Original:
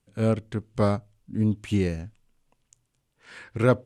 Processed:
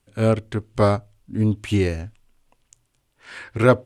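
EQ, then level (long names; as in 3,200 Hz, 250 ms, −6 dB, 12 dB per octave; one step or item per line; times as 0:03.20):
parametric band 170 Hz −9 dB 0.76 octaves
parametric band 6,700 Hz −2 dB
notch filter 470 Hz, Q 12
+7.0 dB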